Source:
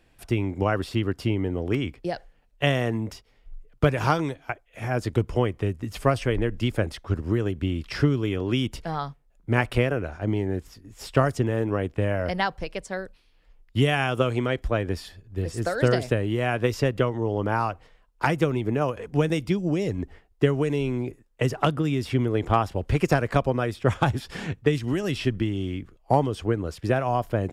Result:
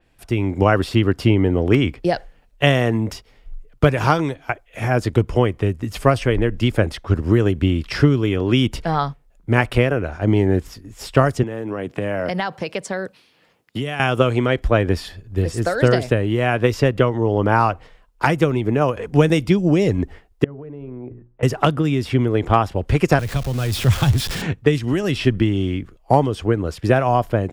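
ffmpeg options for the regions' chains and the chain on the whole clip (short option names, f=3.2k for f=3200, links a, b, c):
-filter_complex "[0:a]asettb=1/sr,asplit=3[a][b][c];[a]atrim=end=11.434[d];[b]atrim=start=11.43:end=14,asetpts=PTS-STARTPTS,afade=t=in:d=0.004:c=qsin,afade=t=out:st=2.566:d=0.004:c=qsin,highpass=f=120:w=0.5412,highpass=f=120:w=1.3066,acompressor=threshold=-31dB:ratio=4:attack=3.2:release=140:knee=1:detection=peak[e];[c]atrim=start=13.996[f];[d][e]acrossfade=d=0.004:c1=hsin:c2=qsin[g];[g][f]acrossfade=d=0.004:c1=qsin:c2=hsin,asettb=1/sr,asplit=3[h][i][j];[h]atrim=end=20.444[k];[i]atrim=start=20.44:end=21.43,asetpts=PTS-STARTPTS,afade=t=in:d=0.004:c=qsin,afade=t=out:st=0.986:d=0.004:c=qsin,lowpass=1.1k,bandreject=f=60:t=h:w=6,bandreject=f=120:t=h:w=6,bandreject=f=180:t=h:w=6,bandreject=f=240:t=h:w=6,bandreject=f=300:t=h:w=6,bandreject=f=360:t=h:w=6,bandreject=f=420:t=h:w=6,acompressor=threshold=-40dB:ratio=5:attack=3.2:release=140:knee=1:detection=peak[l];[j]atrim=start=21.426[m];[k][l]acrossfade=d=0.004:c1=hsin:c2=qsin[n];[n][m]acrossfade=d=0.004:c1=qsin:c2=hsin,asettb=1/sr,asplit=3[o][p][q];[o]atrim=end=23.194[r];[p]atrim=start=23.19:end=24.42,asetpts=PTS-STARTPTS,afade=t=in:d=0.004:c=qsin,afade=t=out:st=1.226:d=0.004:c=qsin,aeval=exprs='val(0)+0.5*0.0316*sgn(val(0))':c=same,acrossover=split=150|3000[s][t][u];[t]acompressor=threshold=-46dB:ratio=2:attack=3.2:release=140:knee=2.83:detection=peak[v];[s][v][u]amix=inputs=3:normalize=0[w];[q]atrim=start=24.416[x];[r][w]acrossfade=d=0.004:c1=hsin:c2=qsin[y];[y][x]acrossfade=d=0.004:c1=qsin:c2=hsin,dynaudnorm=f=160:g=5:m=11.5dB,adynamicequalizer=threshold=0.0112:dfrequency=4600:dqfactor=0.7:tfrequency=4600:tqfactor=0.7:attack=5:release=100:ratio=0.375:range=2:mode=cutabove:tftype=highshelf"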